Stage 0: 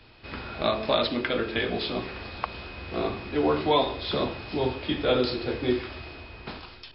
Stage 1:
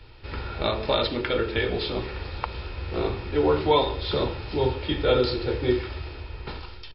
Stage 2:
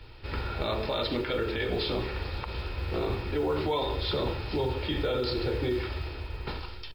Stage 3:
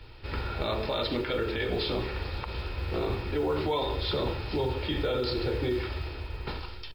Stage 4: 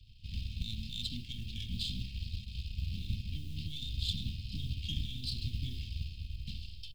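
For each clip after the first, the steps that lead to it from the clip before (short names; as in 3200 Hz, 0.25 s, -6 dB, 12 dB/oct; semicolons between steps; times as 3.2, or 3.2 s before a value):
low shelf 120 Hz +9.5 dB; comb 2.2 ms, depth 46%
limiter -20.5 dBFS, peak gain reduction 11 dB; modulation noise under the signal 35 dB
nothing audible
half-wave gain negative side -7 dB; Chebyshev band-stop 220–2900 Hz, order 4; upward expander 1.5:1, over -44 dBFS; gain +1.5 dB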